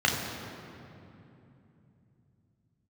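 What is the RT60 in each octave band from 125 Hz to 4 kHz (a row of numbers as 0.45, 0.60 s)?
5.4, 4.5, 3.1, 2.7, 2.3, 1.7 s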